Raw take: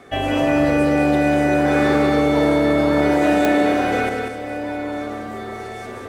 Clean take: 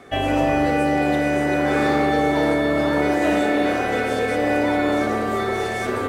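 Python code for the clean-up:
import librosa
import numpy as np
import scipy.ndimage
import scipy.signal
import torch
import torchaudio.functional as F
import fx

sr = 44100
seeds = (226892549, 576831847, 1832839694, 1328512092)

y = fx.fix_declick_ar(x, sr, threshold=10.0)
y = fx.fix_echo_inverse(y, sr, delay_ms=191, level_db=-4.5)
y = fx.fix_level(y, sr, at_s=4.09, step_db=9.5)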